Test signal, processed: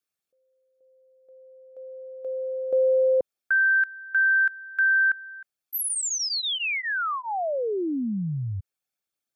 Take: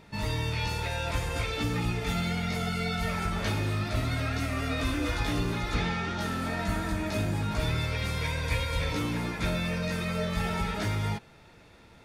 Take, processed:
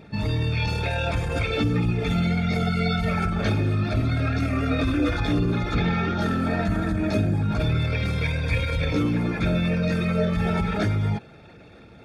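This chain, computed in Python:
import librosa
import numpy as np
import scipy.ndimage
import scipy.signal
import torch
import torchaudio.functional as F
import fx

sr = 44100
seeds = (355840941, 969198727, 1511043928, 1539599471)

y = fx.envelope_sharpen(x, sr, power=1.5)
y = fx.notch_comb(y, sr, f0_hz=990.0)
y = y * 10.0 ** (9.0 / 20.0)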